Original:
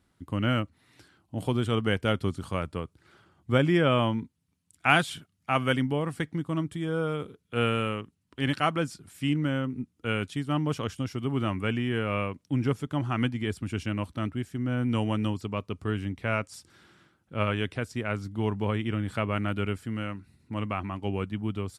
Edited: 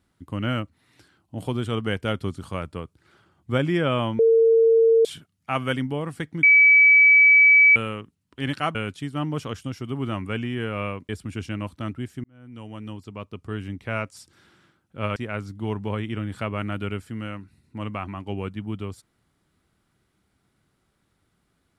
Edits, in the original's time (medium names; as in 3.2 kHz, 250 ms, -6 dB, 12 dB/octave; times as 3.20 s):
4.19–5.05 s: bleep 454 Hz -13 dBFS
6.43–7.76 s: bleep 2.29 kHz -10.5 dBFS
8.75–10.09 s: delete
12.43–13.46 s: delete
14.61–16.21 s: fade in
17.53–17.92 s: delete